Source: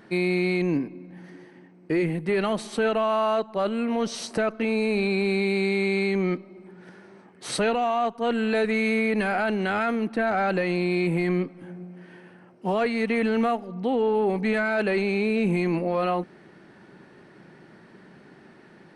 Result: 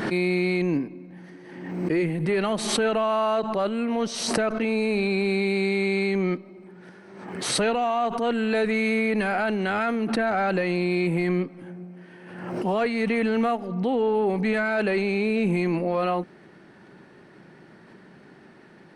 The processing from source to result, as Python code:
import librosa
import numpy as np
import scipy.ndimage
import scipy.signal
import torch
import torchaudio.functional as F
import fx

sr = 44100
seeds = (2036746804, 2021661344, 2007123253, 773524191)

y = fx.pre_swell(x, sr, db_per_s=48.0)